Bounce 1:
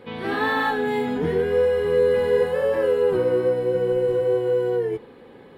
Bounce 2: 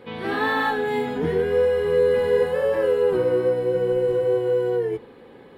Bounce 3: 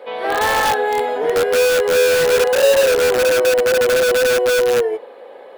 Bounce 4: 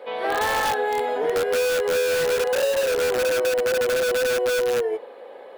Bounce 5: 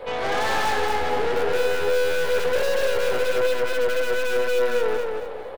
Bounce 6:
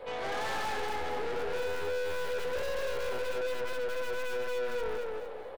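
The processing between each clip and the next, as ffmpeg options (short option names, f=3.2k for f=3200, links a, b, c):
-af "bandreject=f=50:t=h:w=6,bandreject=f=100:t=h:w=6,bandreject=f=150:t=h:w=6,bandreject=f=200:t=h:w=6,bandreject=f=250:t=h:w=6"
-filter_complex "[0:a]highpass=f=600:t=q:w=4.2,asplit=2[a][b];[b]aeval=exprs='(mod(5.01*val(0)+1,2)-1)/5.01':c=same,volume=-3dB[c];[a][c]amix=inputs=2:normalize=0"
-af "acompressor=threshold=-16dB:ratio=6,volume=-3dB"
-af "aeval=exprs='(tanh(31.6*val(0)+0.65)-tanh(0.65))/31.6':c=same,aecho=1:1:228|456|684|912:0.631|0.221|0.0773|0.0271,volume=7dB"
-af "asoftclip=type=tanh:threshold=-19.5dB,volume=-8dB"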